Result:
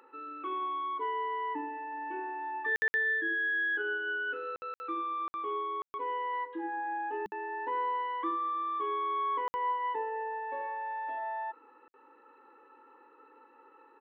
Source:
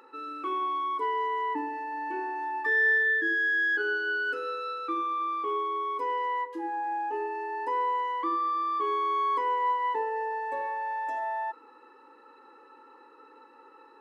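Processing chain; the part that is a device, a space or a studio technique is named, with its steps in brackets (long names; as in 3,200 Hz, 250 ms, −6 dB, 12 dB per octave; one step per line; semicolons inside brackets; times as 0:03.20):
call with lost packets (high-pass filter 160 Hz 12 dB per octave; downsampling to 8,000 Hz; dropped packets of 60 ms)
0:06.33–0:08.31: thirty-one-band graphic EQ 200 Hz +11 dB, 315 Hz +3 dB, 1,600 Hz +7 dB, 4,000 Hz +7 dB
level −4.5 dB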